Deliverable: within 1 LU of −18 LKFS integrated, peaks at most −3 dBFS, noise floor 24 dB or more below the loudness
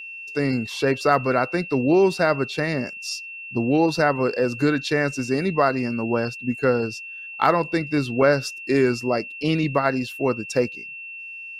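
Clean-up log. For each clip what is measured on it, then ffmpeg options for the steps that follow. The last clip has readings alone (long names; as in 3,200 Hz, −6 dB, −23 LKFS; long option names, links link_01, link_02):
interfering tone 2,700 Hz; level of the tone −34 dBFS; integrated loudness −22.5 LKFS; sample peak −4.5 dBFS; target loudness −18.0 LKFS
→ -af "bandreject=frequency=2700:width=30"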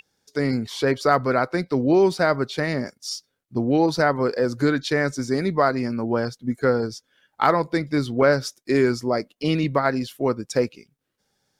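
interfering tone none found; integrated loudness −22.5 LKFS; sample peak −4.5 dBFS; target loudness −18.0 LKFS
→ -af "volume=4.5dB,alimiter=limit=-3dB:level=0:latency=1"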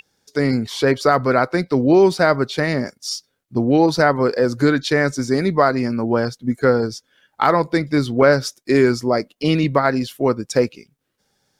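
integrated loudness −18.5 LKFS; sample peak −3.0 dBFS; background noise floor −72 dBFS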